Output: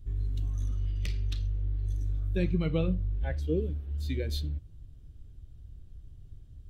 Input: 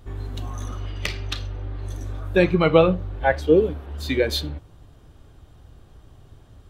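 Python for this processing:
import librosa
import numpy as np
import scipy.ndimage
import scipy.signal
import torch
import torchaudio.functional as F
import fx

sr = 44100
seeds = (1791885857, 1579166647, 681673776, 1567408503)

y = fx.tone_stack(x, sr, knobs='10-0-1')
y = y * librosa.db_to_amplitude(8.0)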